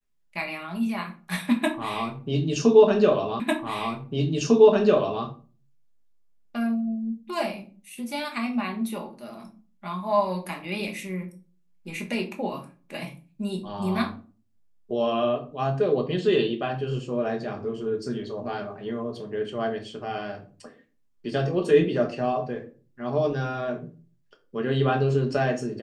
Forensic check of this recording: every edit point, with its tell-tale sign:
3.4 repeat of the last 1.85 s

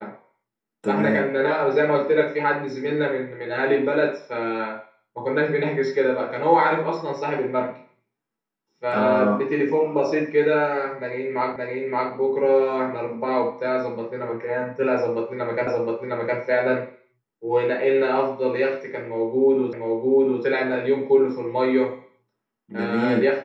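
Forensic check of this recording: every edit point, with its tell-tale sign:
11.56 repeat of the last 0.57 s
15.67 repeat of the last 0.71 s
19.73 repeat of the last 0.7 s

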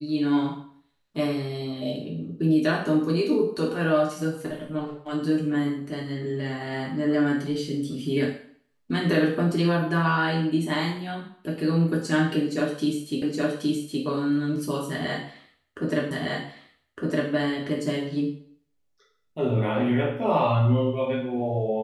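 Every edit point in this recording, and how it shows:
13.22 repeat of the last 0.82 s
16.11 repeat of the last 1.21 s

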